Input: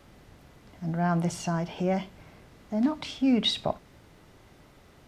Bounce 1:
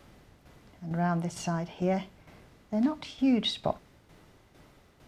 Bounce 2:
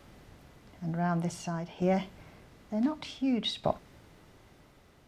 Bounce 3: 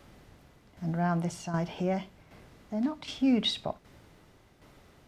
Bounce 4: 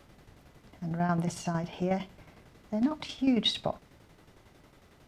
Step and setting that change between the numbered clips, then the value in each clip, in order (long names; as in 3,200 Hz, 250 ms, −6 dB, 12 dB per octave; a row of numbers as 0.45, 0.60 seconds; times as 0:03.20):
shaped tremolo, speed: 2.2, 0.55, 1.3, 11 Hertz